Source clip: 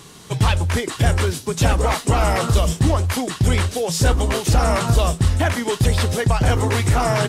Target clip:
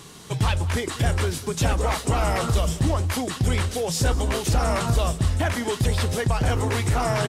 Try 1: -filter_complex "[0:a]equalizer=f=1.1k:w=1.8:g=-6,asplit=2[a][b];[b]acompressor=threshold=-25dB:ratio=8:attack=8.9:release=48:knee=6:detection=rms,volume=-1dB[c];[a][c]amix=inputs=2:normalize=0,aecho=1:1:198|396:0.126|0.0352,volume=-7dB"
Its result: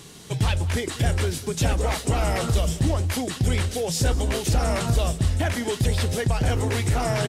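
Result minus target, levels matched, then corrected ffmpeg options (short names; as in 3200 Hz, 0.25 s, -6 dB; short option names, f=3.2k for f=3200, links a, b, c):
1000 Hz band -3.0 dB
-filter_complex "[0:a]asplit=2[a][b];[b]acompressor=threshold=-25dB:ratio=8:attack=8.9:release=48:knee=6:detection=rms,volume=-1dB[c];[a][c]amix=inputs=2:normalize=0,aecho=1:1:198|396:0.126|0.0352,volume=-7dB"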